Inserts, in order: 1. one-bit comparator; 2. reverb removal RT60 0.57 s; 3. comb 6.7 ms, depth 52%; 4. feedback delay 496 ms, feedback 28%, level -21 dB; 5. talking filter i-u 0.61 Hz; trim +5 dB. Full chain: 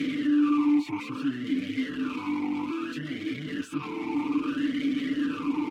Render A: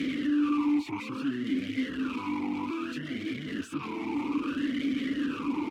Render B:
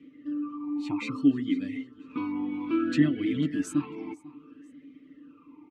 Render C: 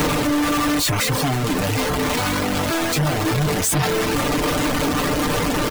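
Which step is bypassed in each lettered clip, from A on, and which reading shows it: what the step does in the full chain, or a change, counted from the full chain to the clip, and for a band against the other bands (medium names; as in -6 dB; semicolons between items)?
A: 3, 250 Hz band -1.5 dB; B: 1, crest factor change +8.0 dB; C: 5, 250 Hz band -14.0 dB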